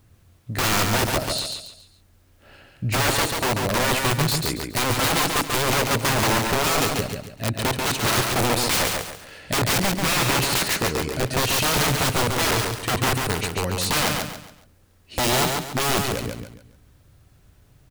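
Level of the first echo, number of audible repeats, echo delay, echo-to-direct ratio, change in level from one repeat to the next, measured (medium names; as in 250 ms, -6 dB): -4.0 dB, 4, 139 ms, -3.5 dB, -9.5 dB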